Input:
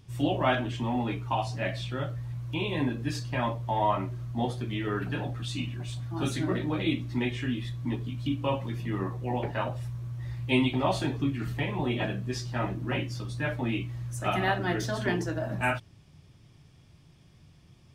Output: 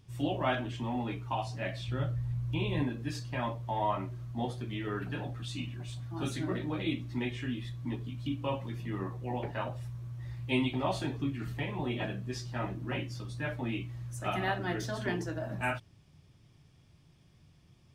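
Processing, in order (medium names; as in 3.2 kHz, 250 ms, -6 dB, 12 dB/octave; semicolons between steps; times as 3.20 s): 1.88–2.83 s: bass shelf 140 Hz +12 dB; trim -5 dB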